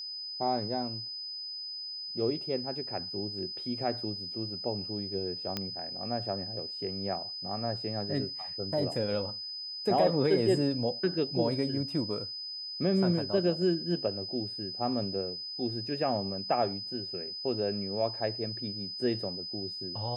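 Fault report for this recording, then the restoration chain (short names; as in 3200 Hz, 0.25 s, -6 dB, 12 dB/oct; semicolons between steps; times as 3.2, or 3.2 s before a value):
tone 5000 Hz -37 dBFS
5.57 pop -17 dBFS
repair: de-click; notch 5000 Hz, Q 30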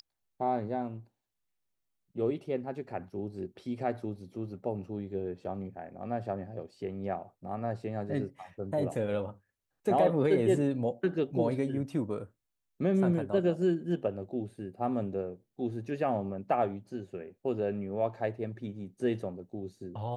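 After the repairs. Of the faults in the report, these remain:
none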